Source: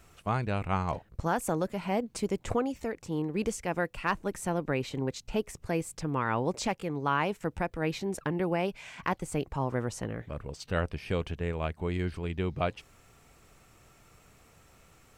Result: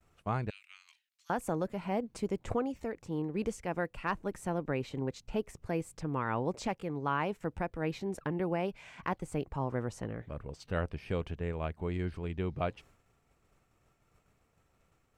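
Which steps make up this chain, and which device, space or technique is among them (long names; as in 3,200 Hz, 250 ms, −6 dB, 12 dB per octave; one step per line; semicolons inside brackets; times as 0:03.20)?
behind a face mask (high-shelf EQ 2,600 Hz −7 dB)
downward expander −52 dBFS
0:00.50–0:01.30: inverse Chebyshev high-pass filter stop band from 580 Hz, stop band 70 dB
level −3 dB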